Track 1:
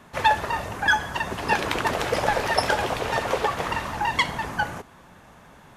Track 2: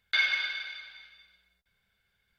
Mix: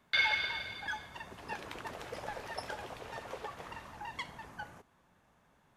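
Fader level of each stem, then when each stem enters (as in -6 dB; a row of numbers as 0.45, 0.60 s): -19.0, -3.0 dB; 0.00, 0.00 s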